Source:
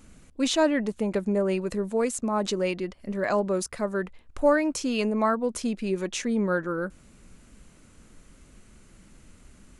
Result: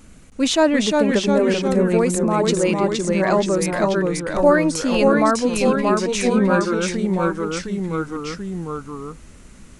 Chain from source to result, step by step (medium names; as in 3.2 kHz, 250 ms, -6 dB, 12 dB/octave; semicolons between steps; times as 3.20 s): ever faster or slower copies 319 ms, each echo -1 st, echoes 3; trim +6 dB